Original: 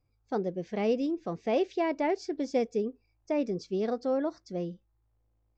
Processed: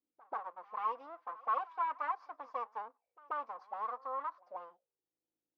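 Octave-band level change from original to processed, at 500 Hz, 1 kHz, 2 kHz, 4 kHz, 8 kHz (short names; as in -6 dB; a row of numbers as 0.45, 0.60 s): -19.5 dB, +2.0 dB, -6.0 dB, under -15 dB, n/a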